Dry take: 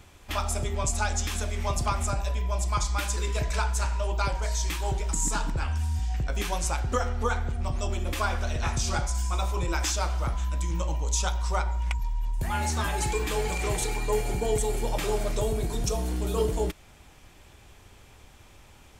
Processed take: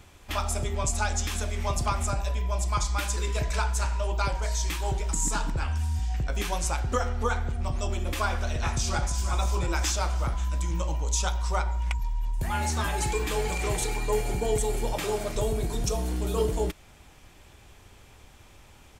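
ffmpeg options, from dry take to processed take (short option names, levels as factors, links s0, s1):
-filter_complex "[0:a]asplit=2[s0][s1];[s1]afade=t=in:st=8.68:d=0.01,afade=t=out:st=9.24:d=0.01,aecho=0:1:340|680|1020|1360|1700|2040|2380:0.354813|0.212888|0.127733|0.0766397|0.0459838|0.0275903|0.0165542[s2];[s0][s2]amix=inputs=2:normalize=0,asettb=1/sr,asplit=3[s3][s4][s5];[s3]atrim=end=14.934[s6];[s4]atrim=start=14.93:end=15.36,asetpts=PTS-STARTPTS,afade=t=in:d=0.004:c=qsin,afade=t=out:st=0.426:d=0.004:c=qsin,highpass=f=98:p=1[s7];[s5]atrim=start=15.356[s8];[s6][s7]acrossfade=d=0.004:c1=hsin:c2=qsin[s9];[s9][s8]acrossfade=d=0.004:c1=qsin:c2=hsin"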